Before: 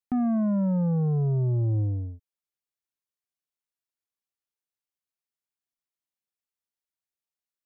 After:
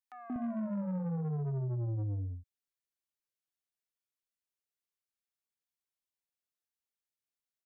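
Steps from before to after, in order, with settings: three bands offset in time highs, mids, lows 0.18/0.24 s, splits 230/850 Hz; soft clip -28.5 dBFS, distortion -12 dB; 1.58–2.04 LPF 1300 Hz 6 dB/oct; gain -3.5 dB

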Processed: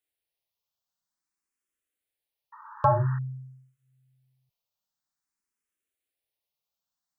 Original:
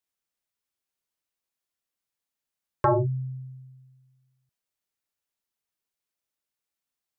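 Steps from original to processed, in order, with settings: painted sound noise, 2.52–3.19, 840–1900 Hz -44 dBFS; endless phaser +0.5 Hz; gain +2 dB

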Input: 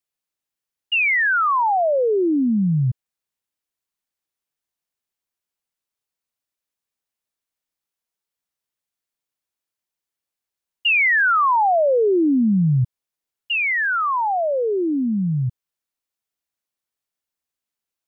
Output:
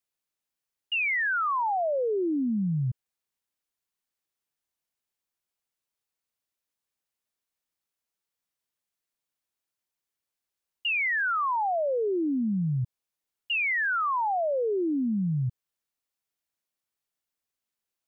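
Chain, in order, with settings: limiter -22 dBFS, peak gain reduction 8.5 dB; gain -1.5 dB

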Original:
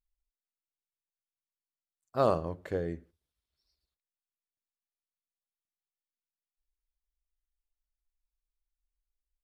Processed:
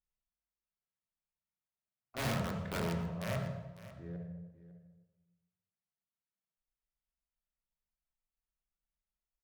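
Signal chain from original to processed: reverse delay 0.694 s, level -10.5 dB; LPF 3100 Hz 24 dB/oct; low shelf 290 Hz -4.5 dB; in parallel at 0 dB: limiter -19 dBFS, peak gain reduction 5.5 dB; on the sum: vibrato 1 Hz 16 cents; wrapped overs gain 22 dB; resonator 180 Hz, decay 0.94 s, mix 40%; echo 0.55 s -16 dB; on a send at -1 dB: reverb RT60 1.1 s, pre-delay 3 ms; on the sum: running maximum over 5 samples; gain -6 dB

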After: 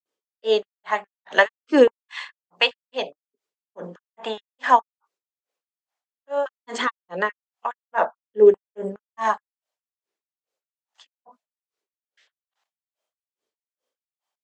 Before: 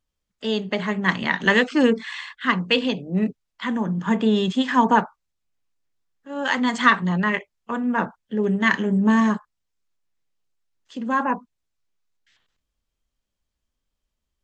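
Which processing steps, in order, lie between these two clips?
grains 0.245 s, grains 2.4/s, pitch spread up and down by 0 st; stepped high-pass 4.8 Hz 410–1800 Hz; gain +2 dB

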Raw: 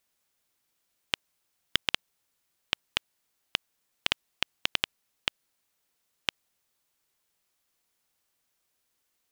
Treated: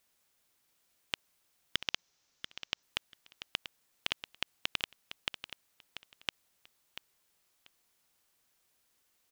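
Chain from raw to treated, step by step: 1.76–2.83 resonant high shelf 7700 Hz -9.5 dB, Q 3; limiter -13 dBFS, peak gain reduction 11 dB; feedback echo 0.688 s, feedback 17%, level -11 dB; gain +2.5 dB

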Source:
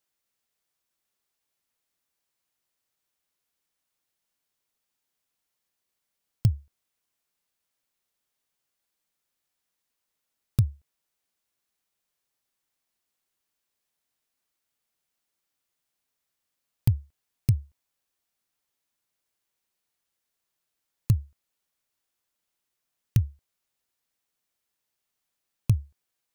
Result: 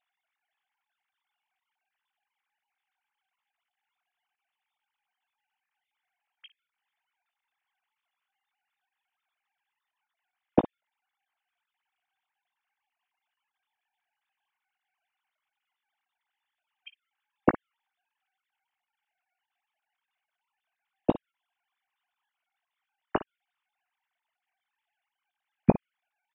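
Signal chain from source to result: sine-wave speech; air absorption 94 m; early reflections 18 ms -14 dB, 57 ms -16 dB; gain -3.5 dB

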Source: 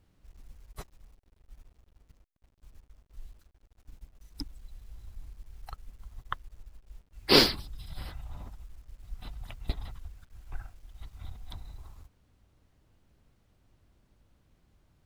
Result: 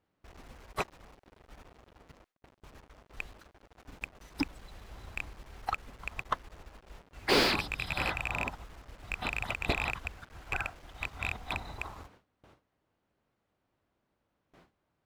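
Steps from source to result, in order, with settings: rattling part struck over -39 dBFS, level -19 dBFS; gate with hold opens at -53 dBFS; overdrive pedal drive 35 dB, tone 1200 Hz, clips at -3.5 dBFS; gain -8 dB

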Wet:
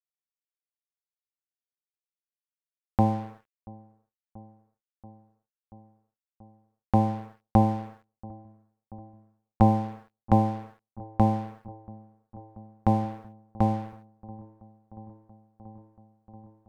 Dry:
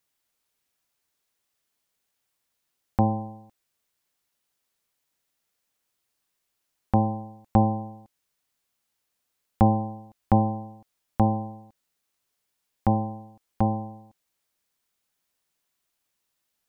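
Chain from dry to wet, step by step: crossover distortion -44.5 dBFS; on a send: dark delay 0.683 s, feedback 80%, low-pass 860 Hz, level -22.5 dB

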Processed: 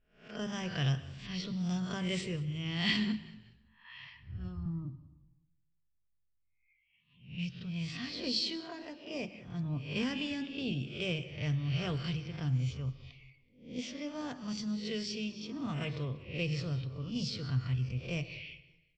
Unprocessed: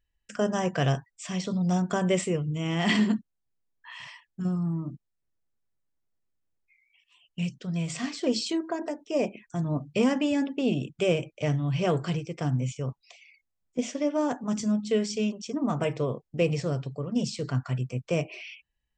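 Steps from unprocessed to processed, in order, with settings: spectral swells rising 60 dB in 0.47 s; 4.09–4.66 resonant low shelf 120 Hz +13.5 dB, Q 3; reverb RT60 0.95 s, pre-delay 92 ms, DRR 16 dB; low-pass opened by the level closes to 2100 Hz, open at -20 dBFS; EQ curve 100 Hz 0 dB, 200 Hz -10 dB, 640 Hz -18 dB, 4500 Hz 0 dB, 7200 Hz -17 dB; frequency-shifting echo 0.188 s, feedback 39%, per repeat -48 Hz, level -20.5 dB

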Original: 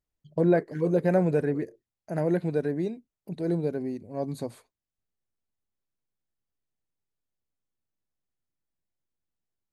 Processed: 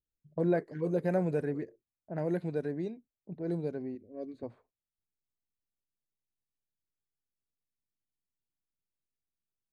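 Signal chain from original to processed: low-pass opened by the level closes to 480 Hz, open at -21.5 dBFS; 3.95–4.43 fixed phaser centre 360 Hz, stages 4; gain -6.5 dB

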